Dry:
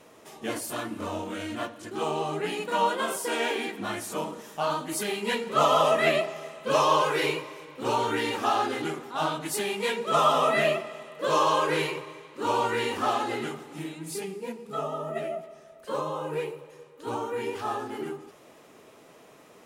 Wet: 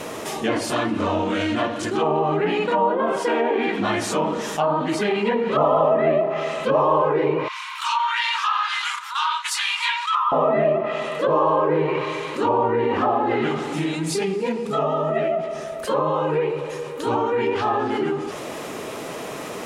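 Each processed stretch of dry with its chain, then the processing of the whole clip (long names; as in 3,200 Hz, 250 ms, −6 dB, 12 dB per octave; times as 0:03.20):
0:07.48–0:10.32: noise gate −36 dBFS, range −19 dB + Chebyshev high-pass with heavy ripple 930 Hz, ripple 3 dB + upward compression, threshold −39 dBFS
whole clip: dynamic equaliser 1,400 Hz, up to −6 dB, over −45 dBFS, Q 7.1; treble cut that deepens with the level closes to 960 Hz, closed at −23.5 dBFS; envelope flattener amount 50%; level +5 dB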